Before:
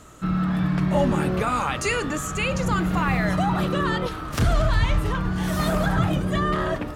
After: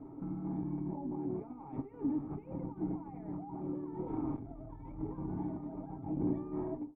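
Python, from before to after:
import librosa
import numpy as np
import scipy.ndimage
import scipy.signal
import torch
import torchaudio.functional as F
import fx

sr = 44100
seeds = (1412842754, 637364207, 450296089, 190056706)

y = fx.fade_out_tail(x, sr, length_s=0.99)
y = fx.low_shelf(y, sr, hz=460.0, db=-8.0)
y = fx.notch(y, sr, hz=550.0, q=12.0)
y = y + 0.58 * np.pad(y, (int(7.5 * sr / 1000.0), 0))[:len(y)]
y = fx.over_compress(y, sr, threshold_db=-35.0, ratio=-1.0)
y = fx.tube_stage(y, sr, drive_db=28.0, bias=0.65)
y = fx.formant_cascade(y, sr, vowel='u')
y = F.gain(torch.from_numpy(y), 10.5).numpy()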